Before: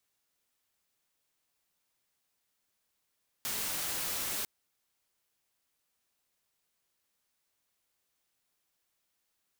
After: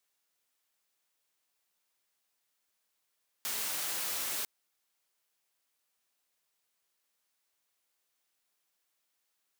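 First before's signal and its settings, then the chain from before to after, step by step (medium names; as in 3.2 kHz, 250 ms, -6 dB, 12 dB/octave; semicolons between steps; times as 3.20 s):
noise white, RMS -35 dBFS 1.00 s
bass shelf 220 Hz -12 dB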